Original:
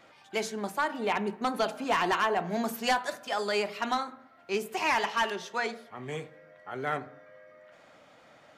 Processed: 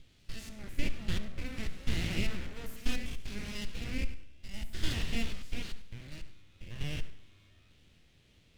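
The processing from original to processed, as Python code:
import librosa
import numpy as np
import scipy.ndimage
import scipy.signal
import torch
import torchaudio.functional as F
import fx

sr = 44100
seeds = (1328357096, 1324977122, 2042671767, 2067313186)

y = fx.spec_steps(x, sr, hold_ms=100)
y = fx.band_shelf(y, sr, hz=1500.0, db=9.5, octaves=1.7)
y = fx.notch(y, sr, hz=2100.0, q=18.0)
y = np.abs(y)
y = fx.tone_stack(y, sr, knobs='10-0-1')
y = fx.echo_feedback(y, sr, ms=71, feedback_pct=47, wet_db=-17.5)
y = F.gain(torch.from_numpy(y), 13.0).numpy()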